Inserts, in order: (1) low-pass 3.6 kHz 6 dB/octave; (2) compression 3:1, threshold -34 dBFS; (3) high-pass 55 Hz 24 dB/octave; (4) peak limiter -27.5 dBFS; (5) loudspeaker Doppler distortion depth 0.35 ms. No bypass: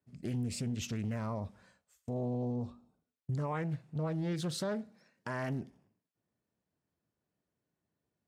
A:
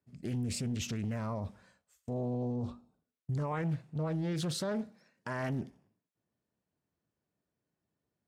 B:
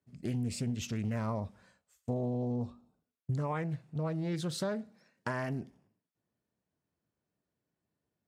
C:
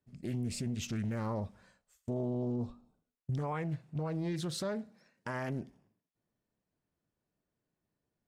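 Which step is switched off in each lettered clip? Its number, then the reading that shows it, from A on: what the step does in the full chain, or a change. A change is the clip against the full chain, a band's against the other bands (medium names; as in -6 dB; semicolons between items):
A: 2, mean gain reduction 8.0 dB; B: 4, crest factor change +5.0 dB; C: 3, momentary loudness spread change -2 LU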